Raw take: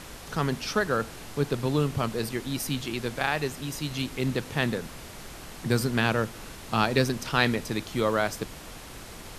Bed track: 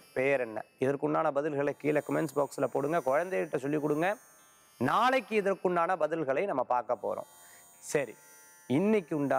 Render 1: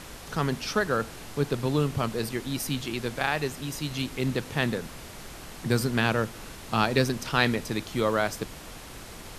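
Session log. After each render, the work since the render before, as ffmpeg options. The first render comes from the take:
-af anull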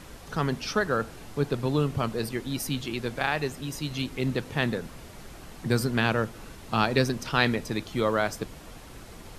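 -af "afftdn=nr=6:nf=-43"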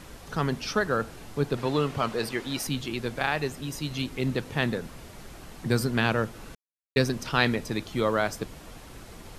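-filter_complex "[0:a]asettb=1/sr,asplit=3[s0][s1][s2];[s0]atrim=end=1.574[s3];[s1]atrim=start=1.57:end=2.67,asetpts=PTS-STARTPTS,afade=t=in:d=0.004:c=qsin,afade=t=out:st=1.096:d=0.004:c=qsin,asplit=2[s4][s5];[s5]highpass=f=720:p=1,volume=3.55,asoftclip=type=tanh:threshold=0.224[s6];[s4][s6]amix=inputs=2:normalize=0,lowpass=f=4300:p=1,volume=0.501[s7];[s2]atrim=start=2.666[s8];[s3][s7]acrossfade=d=0.004:c1=hsin:c2=qsin[s9];[s9][s8]acrossfade=d=0.004:c1=qsin:c2=hsin,asplit=3[s10][s11][s12];[s10]atrim=end=6.55,asetpts=PTS-STARTPTS,afade=t=out:st=6.546:d=0.004:c=hsin[s13];[s11]atrim=start=6.55:end=6.96,asetpts=PTS-STARTPTS,volume=0[s14];[s12]atrim=start=6.96,asetpts=PTS-STARTPTS,afade=t=in:d=0.004:c=hsin[s15];[s13][s14][s15]concat=n=3:v=0:a=1"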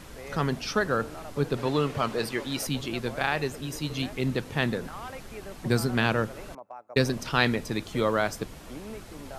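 -filter_complex "[1:a]volume=0.188[s0];[0:a][s0]amix=inputs=2:normalize=0"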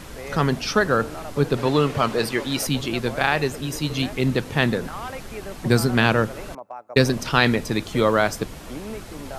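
-af "volume=2.11,alimiter=limit=0.891:level=0:latency=1"

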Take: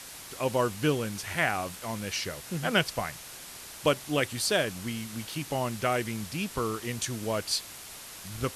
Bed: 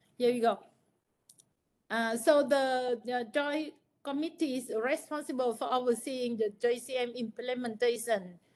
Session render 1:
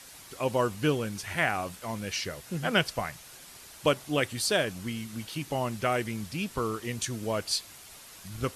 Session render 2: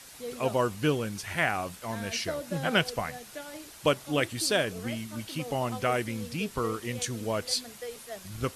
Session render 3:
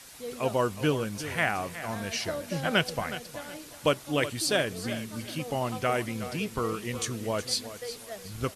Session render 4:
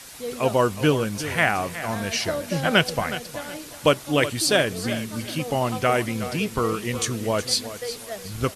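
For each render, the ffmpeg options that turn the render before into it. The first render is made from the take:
-af "afftdn=nr=6:nf=-45"
-filter_complex "[1:a]volume=0.282[s0];[0:a][s0]amix=inputs=2:normalize=0"
-af "aecho=1:1:367|734|1101:0.224|0.0672|0.0201"
-af "volume=2.11"

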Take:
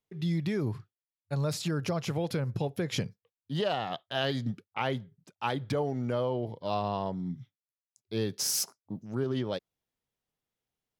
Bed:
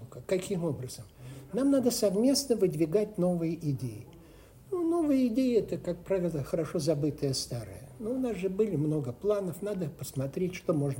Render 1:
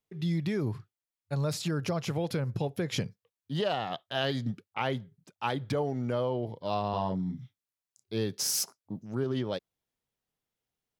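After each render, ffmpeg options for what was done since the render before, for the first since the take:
-filter_complex "[0:a]asettb=1/sr,asplit=3[s0][s1][s2];[s0]atrim=end=6.904[s3];[s1]atrim=start=6.9:end=8.15,asetpts=PTS-STARTPTS,afade=t=in:d=0.004:c=qsin,afade=t=out:st=1.246:d=0.004:c=qsin,asplit=2[s4][s5];[s5]adelay=32,volume=0.668[s6];[s4][s6]amix=inputs=2:normalize=0,atrim=end_sample=55125[s7];[s2]atrim=start=8.146[s8];[s3][s7]acrossfade=d=0.004:c1=hsin:c2=qsin[s9];[s9][s8]acrossfade=d=0.004:c1=qsin:c2=hsin"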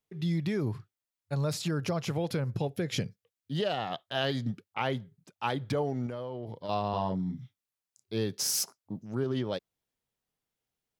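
-filter_complex "[0:a]asettb=1/sr,asplit=3[s0][s1][s2];[s0]atrim=end=2.674[s3];[s1]atrim=start=2.67:end=3.78,asetpts=PTS-STARTPTS,afade=t=in:d=0.004:c=qsin,afade=t=out:st=1.106:d=0.004:c=qsin,equalizer=f=1000:w=2.5:g=-7[s4];[s2]atrim=start=3.776[s5];[s3][s4]acrossfade=d=0.004:c1=hsin:c2=qsin[s6];[s6][s5]acrossfade=d=0.004:c1=qsin:c2=hsin,asettb=1/sr,asplit=3[s7][s8][s9];[s7]atrim=end=6.064[s10];[s8]atrim=start=6.06:end=6.69,asetpts=PTS-STARTPTS,afade=t=in:d=0.004:c=qsin,afade=t=out:st=0.626:d=0.004:c=qsin,acompressor=threshold=0.0224:ratio=6:attack=3.2:release=140:knee=1:detection=peak[s11];[s9]atrim=start=6.686[s12];[s10][s11]acrossfade=d=0.004:c1=hsin:c2=qsin[s13];[s13][s12]acrossfade=d=0.004:c1=qsin:c2=hsin"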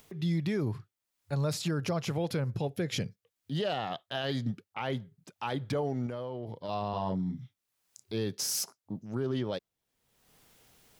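-af "alimiter=limit=0.075:level=0:latency=1:release=11,acompressor=mode=upward:threshold=0.00891:ratio=2.5"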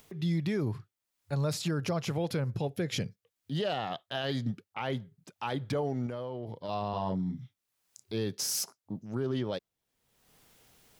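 -af anull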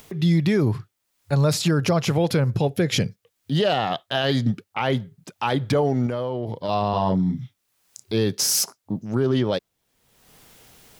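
-af "volume=3.55"

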